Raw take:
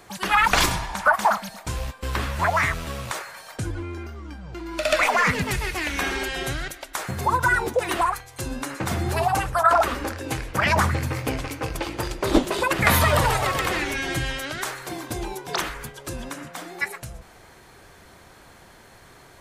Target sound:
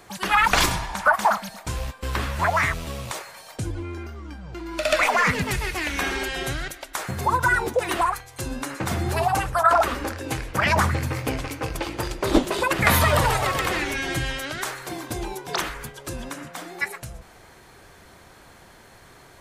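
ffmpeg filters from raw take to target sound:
ffmpeg -i in.wav -filter_complex "[0:a]asettb=1/sr,asplit=3[link_01][link_02][link_03];[link_01]atrim=end=2.734[link_04];[link_02]atrim=start=2.73:end=3.85,asetpts=PTS-STARTPTS,afade=type=in:duration=0.004:curve=qsin,afade=type=out:start_time=1.116:duration=0.004:curve=qsin,equalizer=frequency=1500:width_type=o:width=0.85:gain=-6[link_05];[link_03]atrim=start=3.846[link_06];[link_04][link_05]acrossfade=duration=0.004:curve1=hsin:curve2=qsin[link_07];[link_07][link_06]acrossfade=duration=0.004:curve1=qsin:curve2=hsin" out.wav

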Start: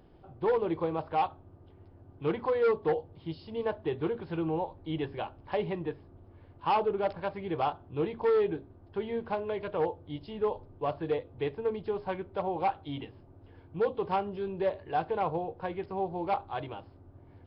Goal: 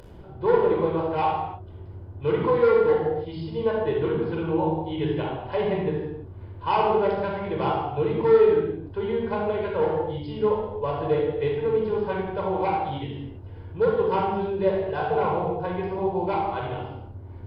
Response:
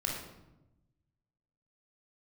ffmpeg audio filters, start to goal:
-filter_complex "[0:a]acompressor=mode=upward:threshold=-45dB:ratio=2.5[link_01];[1:a]atrim=start_sample=2205,afade=type=out:start_time=0.29:duration=0.01,atrim=end_sample=13230,asetrate=31752,aresample=44100[link_02];[link_01][link_02]afir=irnorm=-1:irlink=0"

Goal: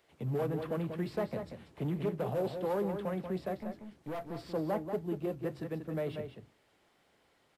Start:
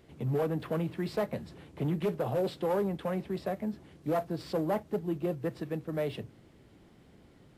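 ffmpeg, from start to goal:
ffmpeg -i in.wav -filter_complex "[0:a]asettb=1/sr,asplit=3[link_01][link_02][link_03];[link_01]atrim=end=3.564[link_04];[link_02]atrim=start=3.56:end=4.36,asetpts=PTS-STARTPTS,afade=type=in:duration=0.004:curve=qsin,afade=type=out:start_time=0.796:duration=0.004:curve=qsin,aeval=exprs='(tanh(39.8*val(0)+0.4)-tanh(0.4))/39.8':channel_layout=same[link_05];[link_03]atrim=start=4.356[link_06];[link_04][link_05]acrossfade=duration=0.004:curve1=hsin:curve2=qsin[link_07];[link_07][link_06]acrossfade=duration=0.004:curve1=qsin:curve2=hsin,acrossover=split=520|2200[link_08][link_09][link_10];[link_08]agate=range=-18dB:threshold=-49dB:ratio=16:detection=peak[link_11];[link_10]alimiter=level_in=18dB:limit=-24dB:level=0:latency=1:release=199,volume=-18dB[link_12];[link_11][link_09][link_12]amix=inputs=3:normalize=0,asplit=2[link_13][link_14];[link_14]adelay=186.6,volume=-7dB,highshelf=frequency=4000:gain=-4.2[link_15];[link_13][link_15]amix=inputs=2:normalize=0,volume=-3.5dB" out.wav

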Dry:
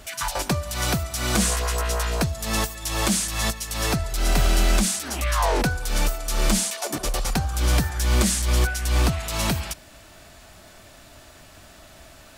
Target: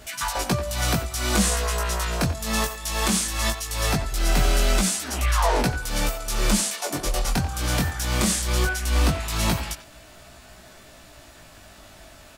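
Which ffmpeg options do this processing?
ffmpeg -i in.wav -filter_complex "[0:a]asplit=2[link_01][link_02];[link_02]adelay=90,highpass=300,lowpass=3400,asoftclip=type=hard:threshold=-18dB,volume=-10dB[link_03];[link_01][link_03]amix=inputs=2:normalize=0,flanger=delay=16:depth=7:speed=0.19,volume=3dB" out.wav

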